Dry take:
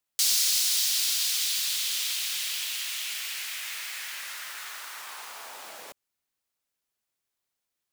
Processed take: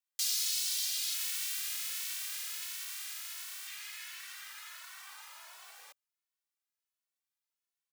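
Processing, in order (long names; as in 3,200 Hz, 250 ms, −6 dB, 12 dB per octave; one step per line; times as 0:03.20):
0:01.13–0:03.66: ceiling on every frequency bin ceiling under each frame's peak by 15 dB
high-pass filter 980 Hz 12 dB per octave
barber-pole flanger 2.2 ms +1.4 Hz
level −5.5 dB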